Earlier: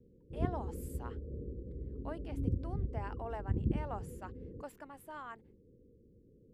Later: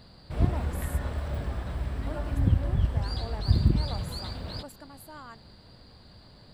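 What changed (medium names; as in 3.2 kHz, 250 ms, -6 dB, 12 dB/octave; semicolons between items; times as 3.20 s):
background: remove steep low-pass 500 Hz 96 dB/octave; master: add tone controls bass +12 dB, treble +10 dB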